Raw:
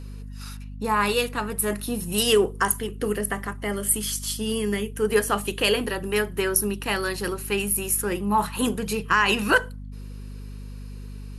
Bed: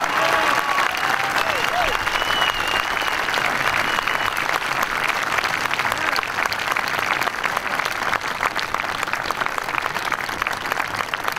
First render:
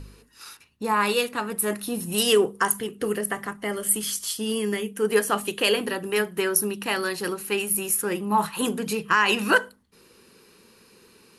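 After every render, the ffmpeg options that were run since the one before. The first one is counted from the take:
-af "bandreject=f=50:t=h:w=4,bandreject=f=100:t=h:w=4,bandreject=f=150:t=h:w=4,bandreject=f=200:t=h:w=4,bandreject=f=250:t=h:w=4"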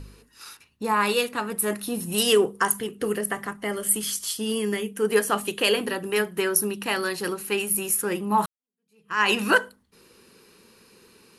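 -filter_complex "[0:a]asplit=2[s0][s1];[s0]atrim=end=8.46,asetpts=PTS-STARTPTS,afade=t=out:st=8.456:d=0.004:c=hsin[s2];[s1]atrim=start=8.46,asetpts=PTS-STARTPTS,afade=t=in:d=0.75:c=exp[s3];[s2][s3]concat=n=2:v=0:a=1"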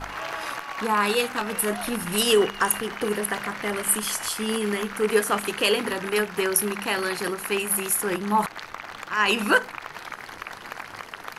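-filter_complex "[1:a]volume=0.2[s0];[0:a][s0]amix=inputs=2:normalize=0"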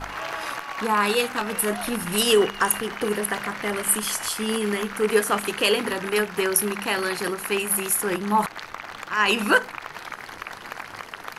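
-af "volume=1.12"

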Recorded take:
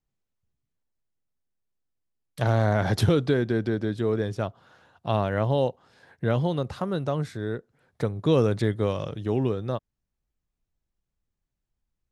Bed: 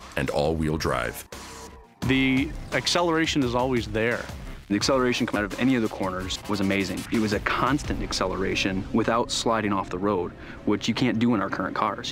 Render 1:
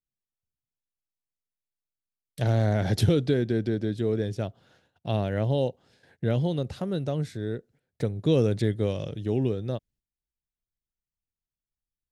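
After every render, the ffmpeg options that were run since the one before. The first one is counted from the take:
-af "agate=range=0.224:threshold=0.00158:ratio=16:detection=peak,equalizer=f=1100:t=o:w=1:g=-12.5"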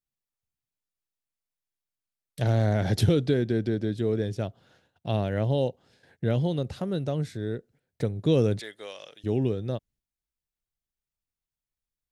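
-filter_complex "[0:a]asettb=1/sr,asplit=3[s0][s1][s2];[s0]atrim=end=8.604[s3];[s1]atrim=start=8.6:end=9.24,asetpts=PTS-STARTPTS,afade=t=in:d=0.004:c=qsin,afade=t=out:st=0.636:d=0.004:c=qsin,highpass=970[s4];[s2]atrim=start=9.236[s5];[s3][s4]acrossfade=d=0.004:c1=hsin:c2=qsin[s6];[s6][s5]acrossfade=d=0.004:c1=qsin:c2=hsin"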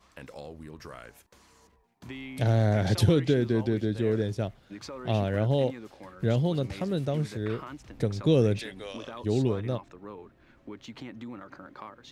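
-filter_complex "[1:a]volume=0.112[s0];[0:a][s0]amix=inputs=2:normalize=0"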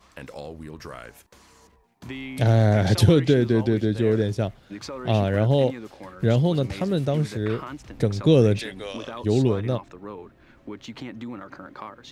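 -af "volume=1.88"

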